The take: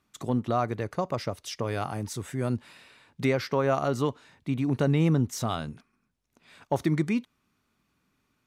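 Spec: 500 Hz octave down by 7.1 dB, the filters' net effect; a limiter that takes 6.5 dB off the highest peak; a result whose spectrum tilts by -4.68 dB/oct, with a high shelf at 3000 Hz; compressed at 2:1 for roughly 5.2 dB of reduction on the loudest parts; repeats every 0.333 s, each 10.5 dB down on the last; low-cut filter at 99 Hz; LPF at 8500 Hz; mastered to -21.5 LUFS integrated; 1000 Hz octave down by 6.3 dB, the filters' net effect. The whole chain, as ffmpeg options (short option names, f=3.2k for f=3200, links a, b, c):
-af "highpass=99,lowpass=8.5k,equalizer=f=500:t=o:g=-7.5,equalizer=f=1k:t=o:g=-7,highshelf=f=3k:g=8,acompressor=threshold=-31dB:ratio=2,alimiter=limit=-24dB:level=0:latency=1,aecho=1:1:333|666|999:0.299|0.0896|0.0269,volume=14.5dB"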